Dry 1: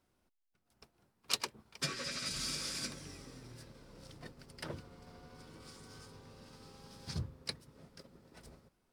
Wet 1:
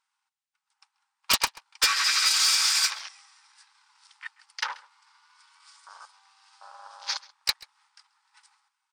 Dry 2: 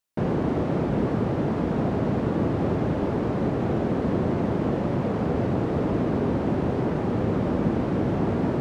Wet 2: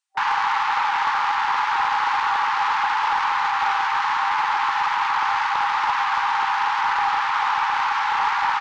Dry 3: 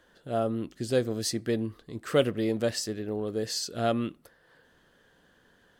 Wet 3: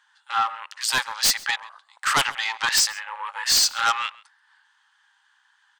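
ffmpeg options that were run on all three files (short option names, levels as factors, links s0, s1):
-filter_complex "[0:a]aeval=exprs='if(lt(val(0),0),0.708*val(0),val(0))':c=same,afftfilt=real='re*between(b*sr/4096,780,9700)':imag='im*between(b*sr/4096,780,9700)':win_size=4096:overlap=0.75,afwtdn=0.00158,aeval=exprs='0.112*sin(PI/2*3.55*val(0)/0.112)':c=same,asplit=2[s0][s1];[s1]adelay=134.1,volume=0.0891,highshelf=f=4000:g=-3.02[s2];[s0][s2]amix=inputs=2:normalize=0,volume=1.78"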